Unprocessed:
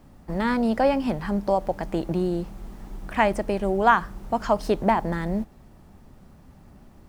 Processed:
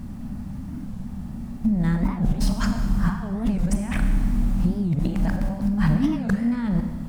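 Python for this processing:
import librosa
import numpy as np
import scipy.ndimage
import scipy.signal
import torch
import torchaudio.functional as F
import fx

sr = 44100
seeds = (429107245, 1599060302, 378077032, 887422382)

y = x[::-1].copy()
y = fx.peak_eq(y, sr, hz=8800.0, db=2.5, octaves=0.77)
y = fx.over_compress(y, sr, threshold_db=-32.0, ratio=-1.0)
y = fx.low_shelf_res(y, sr, hz=300.0, db=7.5, q=3.0)
y = fx.rev_schroeder(y, sr, rt60_s=1.5, comb_ms=30, drr_db=5.5)
y = fx.record_warp(y, sr, rpm=45.0, depth_cents=250.0)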